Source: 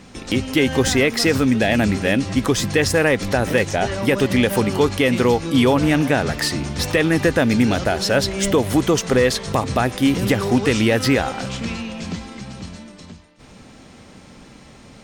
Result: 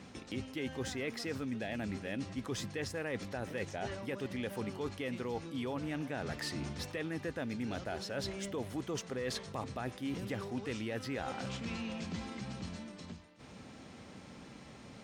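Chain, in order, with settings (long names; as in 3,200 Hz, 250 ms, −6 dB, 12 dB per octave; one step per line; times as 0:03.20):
high-pass filter 68 Hz
high-shelf EQ 7,300 Hz −6.5 dB
reversed playback
downward compressor 6 to 1, threshold −29 dBFS, peak gain reduction 16.5 dB
reversed playback
level −7.5 dB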